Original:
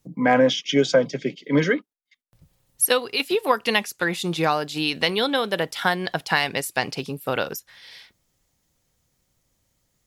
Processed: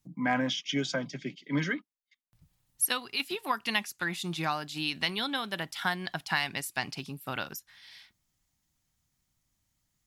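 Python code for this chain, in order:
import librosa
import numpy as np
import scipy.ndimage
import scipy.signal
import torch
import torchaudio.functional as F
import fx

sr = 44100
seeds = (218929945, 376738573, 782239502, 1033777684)

y = fx.peak_eq(x, sr, hz=480.0, db=-14.5, octaves=0.62)
y = y * 10.0 ** (-7.0 / 20.0)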